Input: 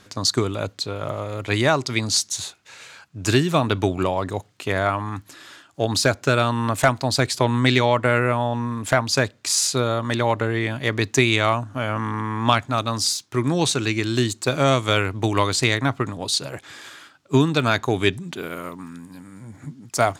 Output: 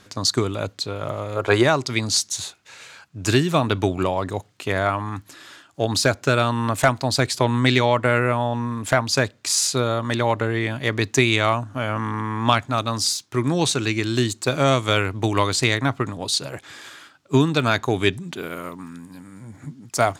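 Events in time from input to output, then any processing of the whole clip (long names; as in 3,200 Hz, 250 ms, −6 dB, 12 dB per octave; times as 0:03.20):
0:01.36–0:01.63: gain on a spectral selection 340–1,700 Hz +10 dB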